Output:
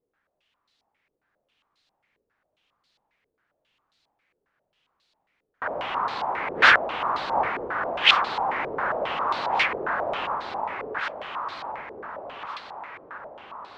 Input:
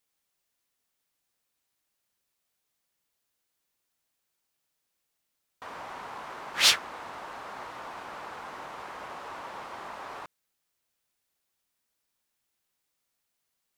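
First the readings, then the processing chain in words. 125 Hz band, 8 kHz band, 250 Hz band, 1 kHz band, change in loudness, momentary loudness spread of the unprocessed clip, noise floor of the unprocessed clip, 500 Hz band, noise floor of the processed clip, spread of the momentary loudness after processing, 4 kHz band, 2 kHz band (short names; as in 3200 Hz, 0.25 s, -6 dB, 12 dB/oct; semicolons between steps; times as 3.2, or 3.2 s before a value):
+10.5 dB, under -10 dB, +12.0 dB, +14.5 dB, +7.5 dB, 21 LU, -81 dBFS, +15.0 dB, -79 dBFS, 20 LU, +3.5 dB, +13.5 dB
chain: echo with dull and thin repeats by turns 0.73 s, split 1000 Hz, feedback 73%, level -3 dB; stepped low-pass 7.4 Hz 450–4100 Hz; gain +8 dB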